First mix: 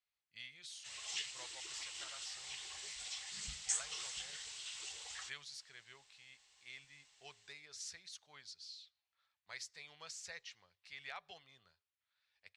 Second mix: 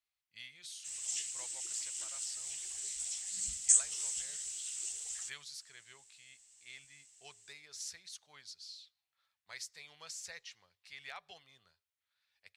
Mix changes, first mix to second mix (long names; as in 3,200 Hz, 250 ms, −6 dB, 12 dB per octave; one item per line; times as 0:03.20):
background: add octave-band graphic EQ 125/250/500/1,000/2,000/4,000/8,000 Hz −6/+4/−5/−11/−4/−8/+9 dB
master: remove high-frequency loss of the air 56 metres